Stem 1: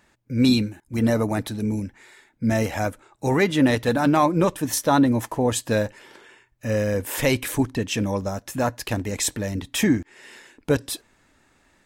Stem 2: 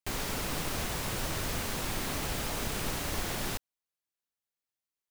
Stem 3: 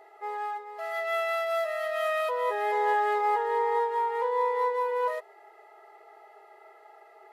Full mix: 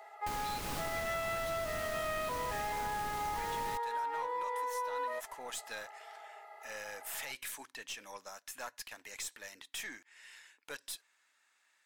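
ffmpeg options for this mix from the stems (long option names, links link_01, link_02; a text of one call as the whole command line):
ffmpeg -i stem1.wav -i stem2.wav -i stem3.wav -filter_complex "[0:a]highpass=1300,alimiter=limit=-20.5dB:level=0:latency=1:release=130,aeval=exprs='(tanh(20*val(0)+0.3)-tanh(0.3))/20':channel_layout=same,volume=-7.5dB[link_01];[1:a]adelay=200,volume=-2.5dB[link_02];[2:a]highpass=frequency=570:width=0.5412,highpass=frequency=570:width=1.3066,alimiter=limit=-23.5dB:level=0:latency=1,volume=1.5dB[link_03];[link_01][link_02][link_03]amix=inputs=3:normalize=0,acompressor=threshold=-34dB:ratio=6" out.wav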